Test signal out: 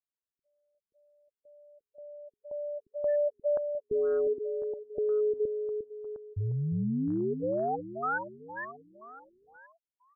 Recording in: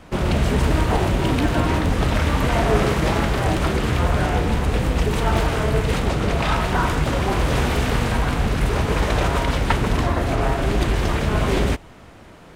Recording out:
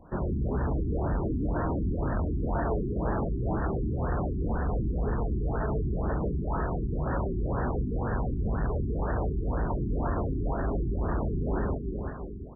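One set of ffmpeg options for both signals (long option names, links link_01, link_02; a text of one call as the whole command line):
ffmpeg -i in.wav -af "aecho=1:1:354|708|1062|1416|1770|2124:0.447|0.232|0.121|0.0628|0.0327|0.017,asoftclip=type=hard:threshold=-16.5dB,afftfilt=real='re*lt(b*sr/1024,400*pow(1900/400,0.5+0.5*sin(2*PI*2*pts/sr)))':imag='im*lt(b*sr/1024,400*pow(1900/400,0.5+0.5*sin(2*PI*2*pts/sr)))':win_size=1024:overlap=0.75,volume=-7.5dB" out.wav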